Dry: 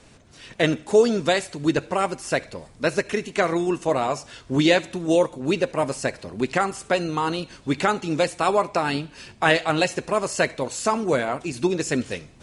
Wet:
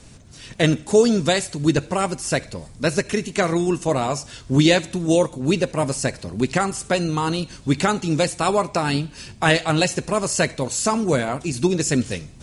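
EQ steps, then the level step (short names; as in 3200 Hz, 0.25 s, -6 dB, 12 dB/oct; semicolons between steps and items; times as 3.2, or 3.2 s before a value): tone controls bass +9 dB, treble +8 dB; 0.0 dB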